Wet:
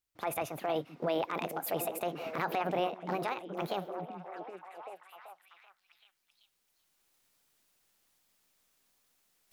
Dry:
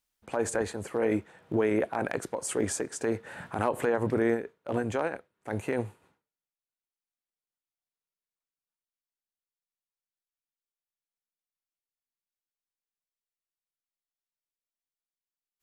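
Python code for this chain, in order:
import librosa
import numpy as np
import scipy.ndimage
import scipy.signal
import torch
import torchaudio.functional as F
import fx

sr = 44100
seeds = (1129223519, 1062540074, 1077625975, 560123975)

y = fx.speed_glide(x, sr, from_pct=146, to_pct=182)
y = fx.recorder_agc(y, sr, target_db=-17.0, rise_db_per_s=8.9, max_gain_db=30)
y = fx.echo_stepped(y, sr, ms=385, hz=220.0, octaves=0.7, feedback_pct=70, wet_db=-3)
y = y * 10.0 ** (-5.5 / 20.0)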